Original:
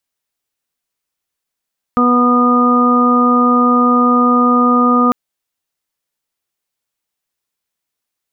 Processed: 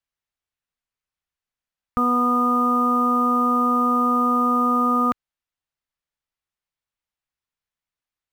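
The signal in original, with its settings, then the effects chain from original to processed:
steady harmonic partials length 3.15 s, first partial 245 Hz, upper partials −7/−11/−14/0 dB, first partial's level −11.5 dB
low-pass filter 1,000 Hz 6 dB per octave
parametric band 360 Hz −13.5 dB 3 octaves
in parallel at −9 dB: floating-point word with a short mantissa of 2 bits

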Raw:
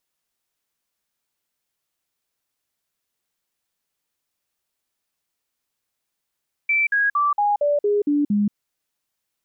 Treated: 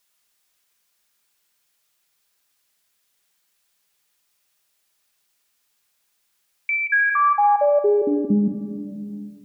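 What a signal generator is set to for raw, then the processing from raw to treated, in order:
stepped sweep 2,330 Hz down, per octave 2, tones 8, 0.18 s, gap 0.05 s −16 dBFS
rectangular room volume 2,500 cubic metres, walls mixed, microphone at 1.3 metres
one half of a high-frequency compander encoder only

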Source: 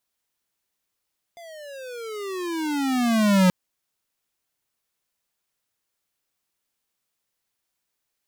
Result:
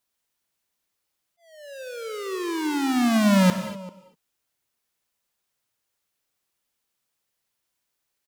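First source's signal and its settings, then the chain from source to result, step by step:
pitch glide with a swell square, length 2.13 s, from 697 Hz, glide −23.5 semitones, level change +27 dB, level −15.5 dB
volume swells 442 ms
far-end echo of a speakerphone 390 ms, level −10 dB
reverb whose tail is shaped and stops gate 270 ms flat, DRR 8.5 dB

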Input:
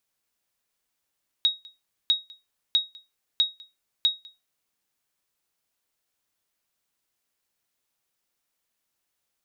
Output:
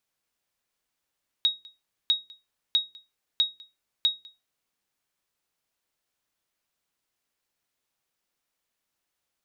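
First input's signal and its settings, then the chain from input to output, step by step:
ping with an echo 3,780 Hz, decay 0.22 s, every 0.65 s, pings 5, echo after 0.20 s, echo −25 dB −13 dBFS
high-shelf EQ 6,400 Hz −5 dB
hum removal 105.7 Hz, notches 4

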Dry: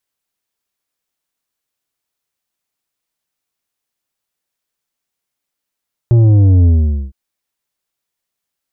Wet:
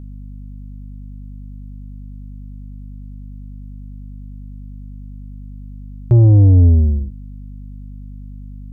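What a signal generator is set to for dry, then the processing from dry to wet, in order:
bass drop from 120 Hz, over 1.01 s, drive 8 dB, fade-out 0.46 s, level −6.5 dB
mains hum 50 Hz, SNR 14 dB

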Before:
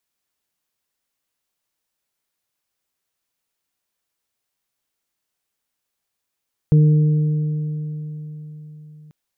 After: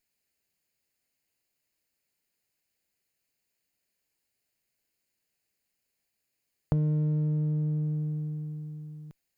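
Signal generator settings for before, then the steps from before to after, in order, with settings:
harmonic partials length 2.39 s, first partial 152 Hz, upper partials −16/−16.5 dB, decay 4.35 s, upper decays 3.17/3.25 s, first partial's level −8.5 dB
lower of the sound and its delayed copy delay 0.44 ms
downward compressor 5 to 1, threshold −26 dBFS

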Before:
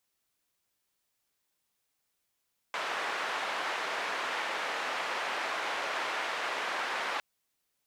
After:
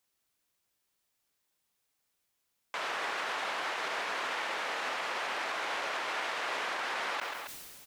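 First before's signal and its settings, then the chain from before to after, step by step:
band-limited noise 590–1,800 Hz, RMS −34 dBFS 4.46 s
brickwall limiter −25.5 dBFS
repeating echo 136 ms, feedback 34%, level −24 dB
level that may fall only so fast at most 28 dB per second

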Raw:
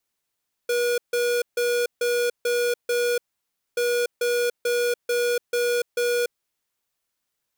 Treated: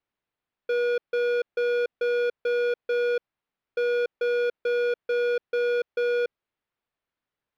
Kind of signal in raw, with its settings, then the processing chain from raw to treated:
beeps in groups square 482 Hz, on 0.29 s, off 0.15 s, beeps 6, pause 0.59 s, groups 2, −22.5 dBFS
high-frequency loss of the air 350 metres

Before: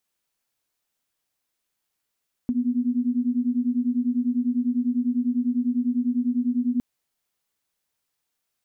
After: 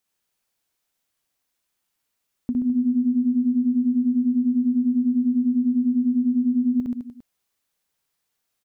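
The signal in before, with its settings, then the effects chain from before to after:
two tones that beat 240 Hz, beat 10 Hz, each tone −23.5 dBFS 4.31 s
on a send: reverse bouncing-ball delay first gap 60 ms, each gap 1.15×, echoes 5
on the sum: downward compressor 2.5 to 1, threshold −18 dBFS

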